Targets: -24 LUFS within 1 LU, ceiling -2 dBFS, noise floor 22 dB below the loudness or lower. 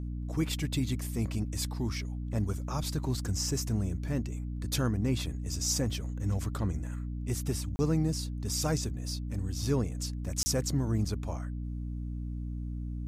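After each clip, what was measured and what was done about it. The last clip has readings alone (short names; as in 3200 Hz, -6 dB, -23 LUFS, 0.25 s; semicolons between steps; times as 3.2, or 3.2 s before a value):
dropouts 2; longest dropout 30 ms; hum 60 Hz; harmonics up to 300 Hz; hum level -33 dBFS; loudness -33.0 LUFS; peak -15.5 dBFS; loudness target -24.0 LUFS
-> interpolate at 7.76/10.43, 30 ms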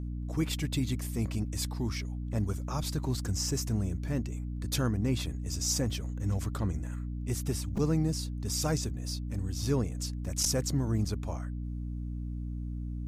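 dropouts 0; hum 60 Hz; harmonics up to 300 Hz; hum level -33 dBFS
-> de-hum 60 Hz, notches 5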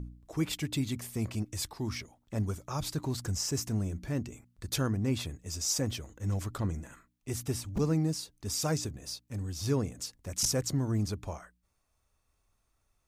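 hum none; loudness -33.5 LUFS; peak -16.0 dBFS; loudness target -24.0 LUFS
-> gain +9.5 dB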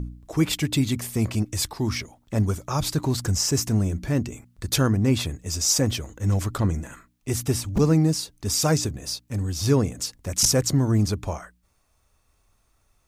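loudness -24.0 LUFS; peak -6.5 dBFS; noise floor -67 dBFS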